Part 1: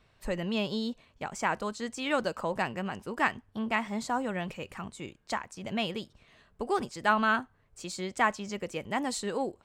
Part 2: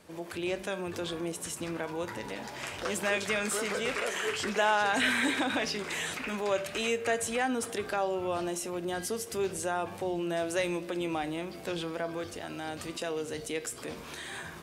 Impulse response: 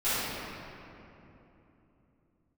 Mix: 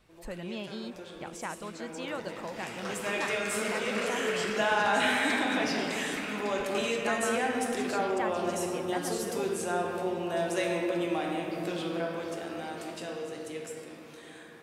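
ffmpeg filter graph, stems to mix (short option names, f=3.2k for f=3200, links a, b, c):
-filter_complex "[0:a]acompressor=threshold=-45dB:ratio=1.5,volume=-1.5dB[a];[1:a]highpass=140,dynaudnorm=f=440:g=11:m=12.5dB,volume=-15.5dB,asplit=2[b][c];[c]volume=-10.5dB[d];[2:a]atrim=start_sample=2205[e];[d][e]afir=irnorm=-1:irlink=0[f];[a][b][f]amix=inputs=3:normalize=0"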